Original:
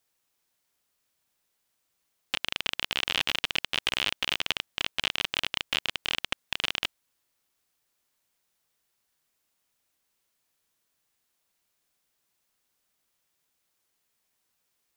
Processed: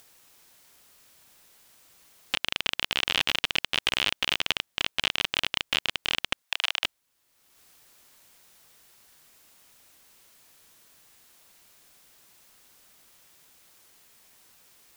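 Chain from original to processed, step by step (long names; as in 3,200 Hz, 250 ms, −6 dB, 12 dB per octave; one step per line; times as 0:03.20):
0:06.42–0:06.84: Butterworth high-pass 660 Hz 36 dB per octave
in parallel at −2 dB: upward compression, threshold −34 dBFS
on the sum: level −3 dB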